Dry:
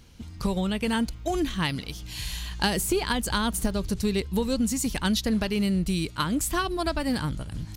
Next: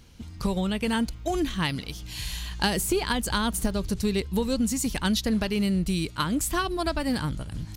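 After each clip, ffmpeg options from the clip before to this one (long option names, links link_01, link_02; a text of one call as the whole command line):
ffmpeg -i in.wav -af anull out.wav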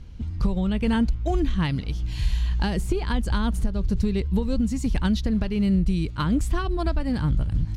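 ffmpeg -i in.wav -af "aemphasis=mode=reproduction:type=bsi,alimiter=limit=-13.5dB:level=0:latency=1:release=446" out.wav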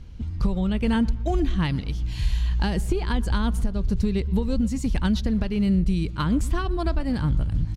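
ffmpeg -i in.wav -filter_complex "[0:a]asplit=2[link_01][link_02];[link_02]adelay=120,lowpass=frequency=1600:poles=1,volume=-19.5dB,asplit=2[link_03][link_04];[link_04]adelay=120,lowpass=frequency=1600:poles=1,volume=0.49,asplit=2[link_05][link_06];[link_06]adelay=120,lowpass=frequency=1600:poles=1,volume=0.49,asplit=2[link_07][link_08];[link_08]adelay=120,lowpass=frequency=1600:poles=1,volume=0.49[link_09];[link_01][link_03][link_05][link_07][link_09]amix=inputs=5:normalize=0" out.wav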